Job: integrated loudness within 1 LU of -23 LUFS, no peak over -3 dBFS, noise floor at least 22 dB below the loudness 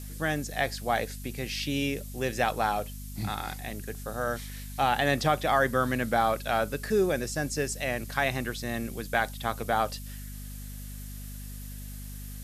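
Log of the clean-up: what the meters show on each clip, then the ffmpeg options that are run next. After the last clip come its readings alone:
hum 50 Hz; highest harmonic 250 Hz; hum level -38 dBFS; noise floor -40 dBFS; noise floor target -52 dBFS; loudness -29.5 LUFS; peak level -10.0 dBFS; loudness target -23.0 LUFS
-> -af "bandreject=f=50:t=h:w=4,bandreject=f=100:t=h:w=4,bandreject=f=150:t=h:w=4,bandreject=f=200:t=h:w=4,bandreject=f=250:t=h:w=4"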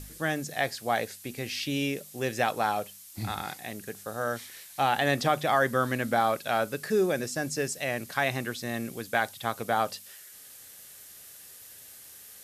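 hum not found; noise floor -49 dBFS; noise floor target -52 dBFS
-> -af "afftdn=nr=6:nf=-49"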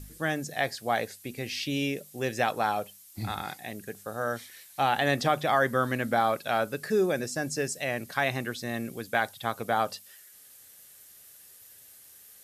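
noise floor -53 dBFS; loudness -29.5 LUFS; peak level -10.0 dBFS; loudness target -23.0 LUFS
-> -af "volume=2.11"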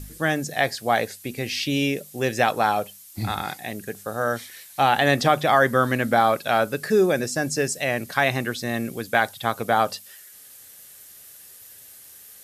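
loudness -23.0 LUFS; peak level -3.5 dBFS; noise floor -47 dBFS

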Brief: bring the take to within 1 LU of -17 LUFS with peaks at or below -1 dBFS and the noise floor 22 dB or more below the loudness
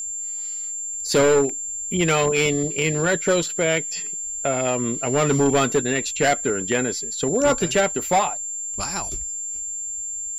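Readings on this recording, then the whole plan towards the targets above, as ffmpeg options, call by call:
steady tone 7.3 kHz; tone level -27 dBFS; loudness -21.5 LUFS; peak level -11.0 dBFS; loudness target -17.0 LUFS
-> -af "bandreject=f=7300:w=30"
-af "volume=1.68"

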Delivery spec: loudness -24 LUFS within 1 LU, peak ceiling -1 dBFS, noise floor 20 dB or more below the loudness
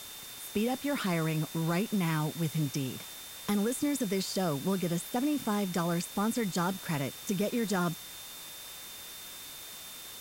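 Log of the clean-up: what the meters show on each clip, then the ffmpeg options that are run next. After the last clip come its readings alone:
steady tone 3.6 kHz; tone level -49 dBFS; noise floor -45 dBFS; noise floor target -53 dBFS; loudness -32.5 LUFS; peak level -19.0 dBFS; loudness target -24.0 LUFS
-> -af "bandreject=f=3600:w=30"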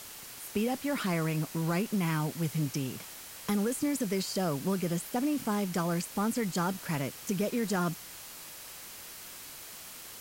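steady tone not found; noise floor -46 dBFS; noise floor target -52 dBFS
-> -af "afftdn=nr=6:nf=-46"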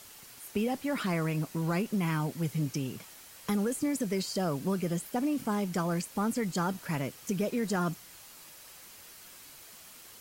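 noise floor -52 dBFS; loudness -32.0 LUFS; peak level -20.0 dBFS; loudness target -24.0 LUFS
-> -af "volume=2.51"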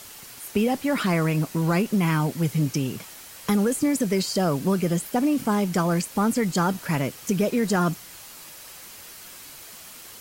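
loudness -24.0 LUFS; peak level -12.0 dBFS; noise floor -44 dBFS

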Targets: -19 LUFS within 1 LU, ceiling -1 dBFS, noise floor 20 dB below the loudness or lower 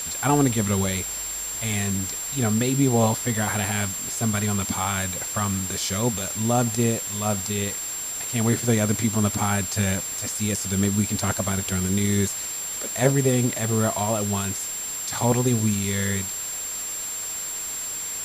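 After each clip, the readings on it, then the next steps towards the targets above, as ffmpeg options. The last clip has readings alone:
steady tone 7.4 kHz; tone level -29 dBFS; noise floor -31 dBFS; noise floor target -44 dBFS; loudness -23.5 LUFS; peak level -5.5 dBFS; loudness target -19.0 LUFS
-> -af "bandreject=f=7400:w=30"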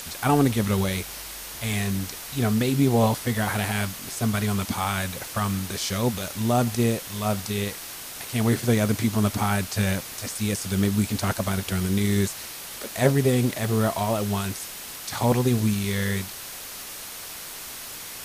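steady tone not found; noise floor -38 dBFS; noise floor target -46 dBFS
-> -af "afftdn=nr=8:nf=-38"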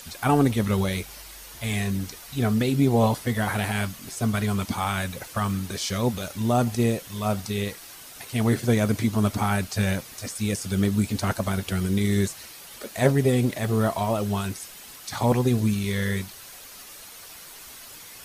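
noise floor -44 dBFS; noise floor target -45 dBFS
-> -af "afftdn=nr=6:nf=-44"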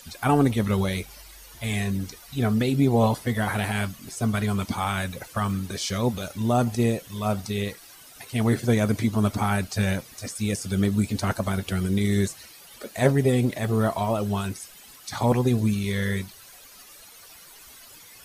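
noise floor -48 dBFS; loudness -25.0 LUFS; peak level -6.0 dBFS; loudness target -19.0 LUFS
-> -af "volume=2,alimiter=limit=0.891:level=0:latency=1"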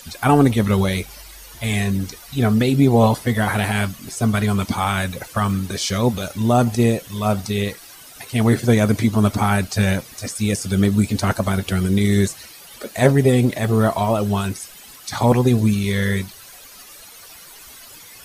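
loudness -19.0 LUFS; peak level -1.0 dBFS; noise floor -42 dBFS

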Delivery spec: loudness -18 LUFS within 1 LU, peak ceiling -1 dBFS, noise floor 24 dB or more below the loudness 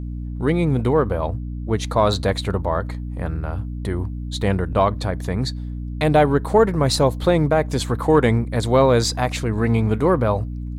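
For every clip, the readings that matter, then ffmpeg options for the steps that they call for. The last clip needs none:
hum 60 Hz; highest harmonic 300 Hz; hum level -26 dBFS; loudness -20.5 LUFS; peak level -3.5 dBFS; loudness target -18.0 LUFS
-> -af "bandreject=f=60:t=h:w=4,bandreject=f=120:t=h:w=4,bandreject=f=180:t=h:w=4,bandreject=f=240:t=h:w=4,bandreject=f=300:t=h:w=4"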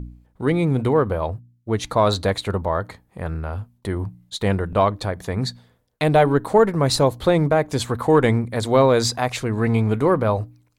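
hum not found; loudness -20.5 LUFS; peak level -4.5 dBFS; loudness target -18.0 LUFS
-> -af "volume=1.33"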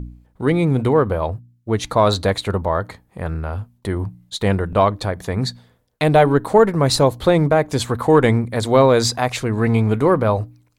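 loudness -18.0 LUFS; peak level -2.0 dBFS; noise floor -61 dBFS

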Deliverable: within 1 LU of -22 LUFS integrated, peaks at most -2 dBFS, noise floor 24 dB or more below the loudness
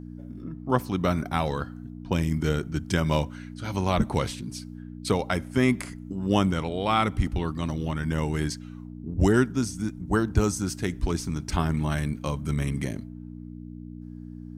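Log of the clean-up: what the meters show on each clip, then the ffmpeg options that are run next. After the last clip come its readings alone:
hum 60 Hz; highest harmonic 300 Hz; hum level -37 dBFS; loudness -27.0 LUFS; peak level -8.5 dBFS; loudness target -22.0 LUFS
-> -af "bandreject=f=60:t=h:w=4,bandreject=f=120:t=h:w=4,bandreject=f=180:t=h:w=4,bandreject=f=240:t=h:w=4,bandreject=f=300:t=h:w=4"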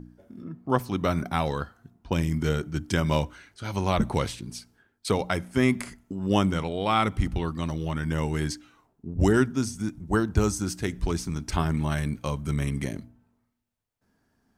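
hum not found; loudness -27.5 LUFS; peak level -8.5 dBFS; loudness target -22.0 LUFS
-> -af "volume=1.88"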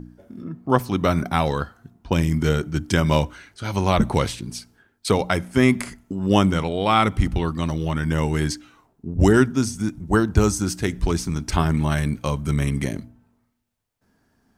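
loudness -22.0 LUFS; peak level -3.0 dBFS; noise floor -67 dBFS

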